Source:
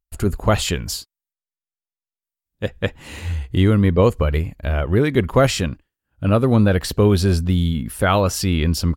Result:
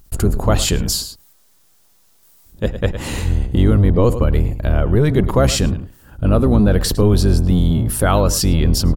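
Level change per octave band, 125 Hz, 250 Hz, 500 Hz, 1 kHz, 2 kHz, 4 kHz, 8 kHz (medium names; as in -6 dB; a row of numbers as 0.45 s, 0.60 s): +3.0 dB, +2.0 dB, +0.5 dB, 0.0 dB, -2.0 dB, +3.0 dB, +6.5 dB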